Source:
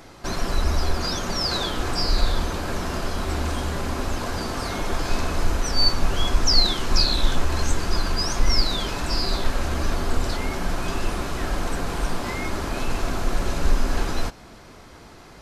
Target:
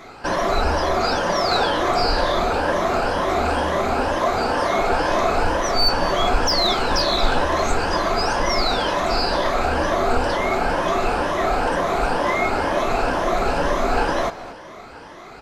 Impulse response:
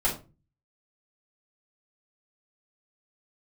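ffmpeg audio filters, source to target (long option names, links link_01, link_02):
-filter_complex "[0:a]afftfilt=real='re*pow(10,9/40*sin(2*PI*(1.2*log(max(b,1)*sr/1024/100)/log(2)-(2.1)*(pts-256)/sr)))':imag='im*pow(10,9/40*sin(2*PI*(1.2*log(max(b,1)*sr/1024/100)/log(2)-(2.1)*(pts-256)/sr)))':win_size=1024:overlap=0.75,adynamicequalizer=threshold=0.00631:dfrequency=630:dqfactor=1.4:tfrequency=630:tqfactor=1.4:attack=5:release=100:ratio=0.375:range=3:mode=boostabove:tftype=bell,asplit=2[link_01][link_02];[link_02]highpass=frequency=720:poles=1,volume=16dB,asoftclip=type=tanh:threshold=-1dB[link_03];[link_01][link_03]amix=inputs=2:normalize=0,lowpass=frequency=1400:poles=1,volume=-6dB,aecho=1:1:227:0.15"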